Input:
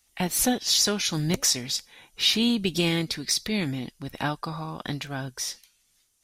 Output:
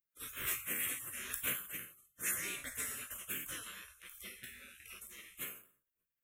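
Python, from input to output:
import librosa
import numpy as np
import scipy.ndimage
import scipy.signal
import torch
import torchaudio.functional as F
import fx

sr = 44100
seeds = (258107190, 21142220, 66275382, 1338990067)

y = fx.spec_trails(x, sr, decay_s=0.53)
y = fx.highpass(y, sr, hz=370.0, slope=6)
y = fx.spec_gate(y, sr, threshold_db=-25, keep='weak')
y = fx.fixed_phaser(y, sr, hz=2000.0, stages=4)
y = fx.doubler(y, sr, ms=16.0, db=-11.5)
y = F.gain(torch.from_numpy(y), 4.0).numpy()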